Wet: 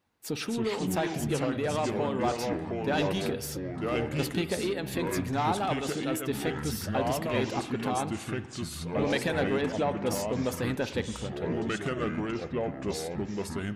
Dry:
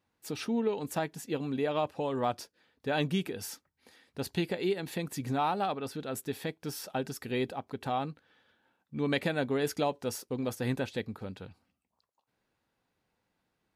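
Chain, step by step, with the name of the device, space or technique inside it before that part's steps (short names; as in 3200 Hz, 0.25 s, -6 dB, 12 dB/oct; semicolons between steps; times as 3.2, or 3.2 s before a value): saturation between pre-emphasis and de-emphasis (high shelf 4500 Hz +11.5 dB; soft clip -23.5 dBFS, distortion -17 dB; high shelf 4500 Hz -11.5 dB); 9.61–10.07 LPF 2600 Hz 12 dB/oct; harmonic-percussive split percussive +5 dB; echoes that change speed 0.198 s, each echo -4 st, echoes 3; spring tank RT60 1.2 s, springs 54 ms, chirp 80 ms, DRR 12.5 dB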